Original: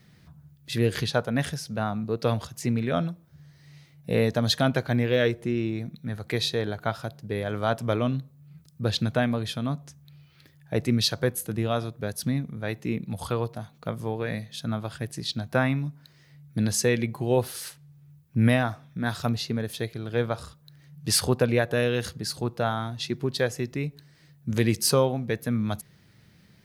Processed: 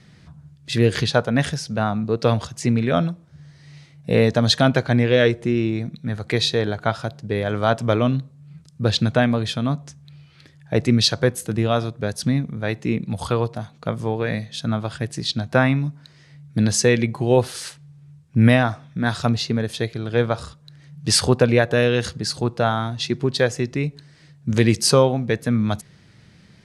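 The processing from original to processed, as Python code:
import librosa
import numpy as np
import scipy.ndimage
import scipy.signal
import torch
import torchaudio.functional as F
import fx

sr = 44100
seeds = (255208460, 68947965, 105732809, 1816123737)

y = scipy.signal.sosfilt(scipy.signal.butter(4, 9200.0, 'lowpass', fs=sr, output='sos'), x)
y = F.gain(torch.from_numpy(y), 6.5).numpy()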